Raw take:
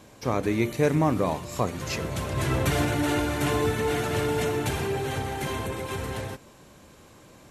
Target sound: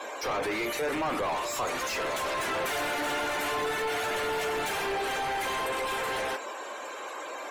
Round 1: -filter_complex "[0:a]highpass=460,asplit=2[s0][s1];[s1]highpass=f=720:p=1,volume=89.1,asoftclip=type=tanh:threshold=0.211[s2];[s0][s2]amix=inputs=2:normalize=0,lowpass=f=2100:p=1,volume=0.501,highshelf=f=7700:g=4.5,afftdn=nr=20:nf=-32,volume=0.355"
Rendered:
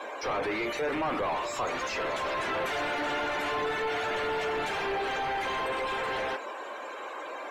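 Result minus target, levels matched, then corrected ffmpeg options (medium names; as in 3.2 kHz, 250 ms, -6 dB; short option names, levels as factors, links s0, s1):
8 kHz band -8.0 dB
-filter_complex "[0:a]highpass=460,asplit=2[s0][s1];[s1]highpass=f=720:p=1,volume=89.1,asoftclip=type=tanh:threshold=0.211[s2];[s0][s2]amix=inputs=2:normalize=0,lowpass=f=2100:p=1,volume=0.501,highshelf=f=7700:g=14,afftdn=nr=20:nf=-32,volume=0.355"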